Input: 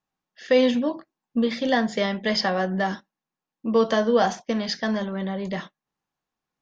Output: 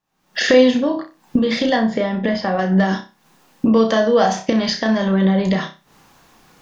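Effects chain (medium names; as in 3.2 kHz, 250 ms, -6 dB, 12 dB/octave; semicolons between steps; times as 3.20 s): recorder AGC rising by 74 dB/s; 1.76–2.59 s: low-pass 1.2 kHz 6 dB/octave; flutter echo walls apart 5.4 m, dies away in 0.29 s; trim +3.5 dB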